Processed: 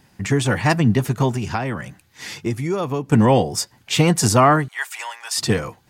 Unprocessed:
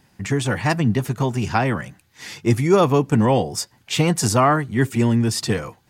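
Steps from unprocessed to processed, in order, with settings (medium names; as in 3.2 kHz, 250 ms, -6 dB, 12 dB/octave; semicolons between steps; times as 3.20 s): 1.31–3.10 s: compression 4:1, threshold -24 dBFS, peak gain reduction 12 dB; 4.68–5.38 s: steep high-pass 760 Hz 36 dB/octave; trim +2.5 dB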